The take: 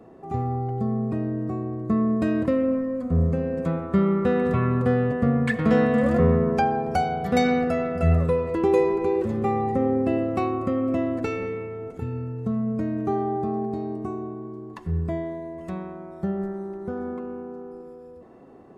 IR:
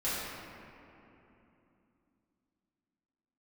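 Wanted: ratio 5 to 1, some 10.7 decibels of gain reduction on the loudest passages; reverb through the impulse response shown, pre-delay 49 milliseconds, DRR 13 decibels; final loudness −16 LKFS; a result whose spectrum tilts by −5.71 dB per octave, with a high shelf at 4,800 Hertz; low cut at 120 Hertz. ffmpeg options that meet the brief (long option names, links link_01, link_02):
-filter_complex "[0:a]highpass=120,highshelf=frequency=4800:gain=-8,acompressor=threshold=-28dB:ratio=5,asplit=2[link_01][link_02];[1:a]atrim=start_sample=2205,adelay=49[link_03];[link_02][link_03]afir=irnorm=-1:irlink=0,volume=-21dB[link_04];[link_01][link_04]amix=inputs=2:normalize=0,volume=16dB"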